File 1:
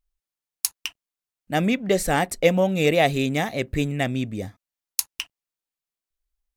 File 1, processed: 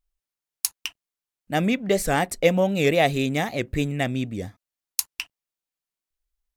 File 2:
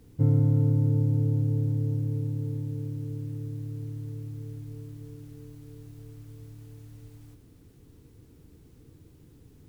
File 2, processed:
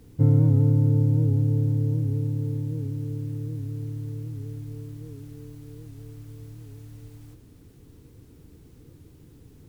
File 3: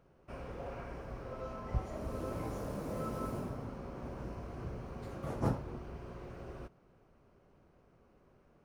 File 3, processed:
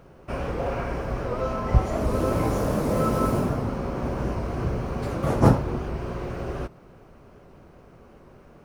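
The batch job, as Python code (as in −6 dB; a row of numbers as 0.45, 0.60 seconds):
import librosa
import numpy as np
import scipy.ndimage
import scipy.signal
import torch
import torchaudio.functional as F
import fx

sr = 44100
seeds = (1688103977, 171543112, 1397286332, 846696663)

y = fx.record_warp(x, sr, rpm=78.0, depth_cents=100.0)
y = y * 10.0 ** (-26 / 20.0) / np.sqrt(np.mean(np.square(y)))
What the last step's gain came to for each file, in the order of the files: −0.5, +3.5, +15.5 decibels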